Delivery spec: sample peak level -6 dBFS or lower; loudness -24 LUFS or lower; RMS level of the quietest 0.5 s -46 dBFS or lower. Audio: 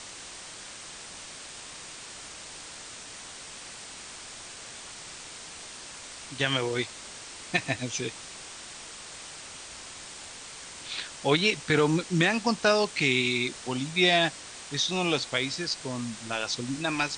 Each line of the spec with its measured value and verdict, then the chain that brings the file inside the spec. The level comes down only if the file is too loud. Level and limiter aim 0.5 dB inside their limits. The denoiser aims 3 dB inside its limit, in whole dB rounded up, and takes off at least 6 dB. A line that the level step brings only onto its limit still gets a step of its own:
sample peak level -9.5 dBFS: OK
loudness -27.0 LUFS: OK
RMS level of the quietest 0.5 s -44 dBFS: fail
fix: denoiser 6 dB, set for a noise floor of -44 dBFS

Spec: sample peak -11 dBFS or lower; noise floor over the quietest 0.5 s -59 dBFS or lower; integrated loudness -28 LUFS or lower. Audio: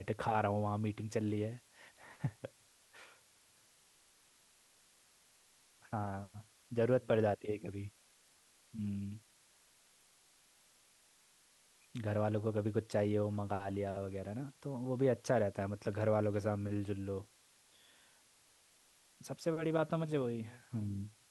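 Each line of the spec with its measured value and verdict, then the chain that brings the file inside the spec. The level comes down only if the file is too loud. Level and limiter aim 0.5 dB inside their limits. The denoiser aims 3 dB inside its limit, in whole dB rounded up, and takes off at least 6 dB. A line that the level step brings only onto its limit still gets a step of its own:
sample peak -19.0 dBFS: OK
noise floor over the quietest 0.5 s -68 dBFS: OK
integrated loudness -37.5 LUFS: OK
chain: none

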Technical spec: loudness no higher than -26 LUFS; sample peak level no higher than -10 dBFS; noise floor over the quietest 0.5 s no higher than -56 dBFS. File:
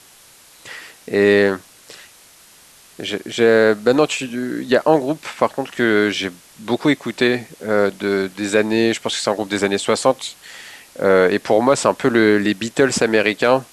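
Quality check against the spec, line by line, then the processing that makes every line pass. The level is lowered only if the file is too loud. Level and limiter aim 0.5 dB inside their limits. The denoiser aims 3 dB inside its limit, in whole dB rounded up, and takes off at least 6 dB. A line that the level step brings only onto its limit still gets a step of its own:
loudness -17.5 LUFS: fail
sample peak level -2.0 dBFS: fail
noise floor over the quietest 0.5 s -47 dBFS: fail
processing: denoiser 6 dB, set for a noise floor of -47 dBFS; gain -9 dB

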